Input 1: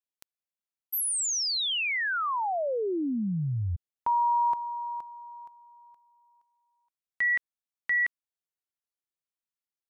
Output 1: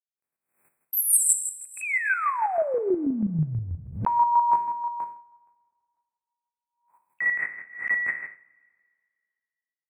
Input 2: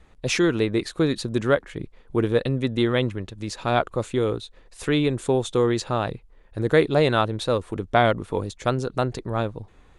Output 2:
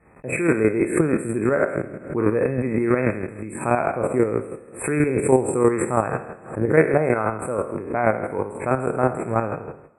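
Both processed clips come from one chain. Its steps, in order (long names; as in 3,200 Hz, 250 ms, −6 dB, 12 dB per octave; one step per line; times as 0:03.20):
peak hold with a decay on every bin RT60 0.91 s
noise gate −42 dBFS, range −27 dB
high-pass filter 120 Hz 12 dB per octave
high-shelf EQ 2,000 Hz −6 dB
automatic gain control gain up to 7.5 dB
dynamic equaliser 7,500 Hz, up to +8 dB, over −42 dBFS, Q 1.2
square-wave tremolo 6.2 Hz, depth 60%, duty 25%
linear-phase brick-wall band-stop 2,600–7,500 Hz
coupled-rooms reverb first 0.35 s, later 2 s, from −18 dB, DRR 12 dB
background raised ahead of every attack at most 120 dB per second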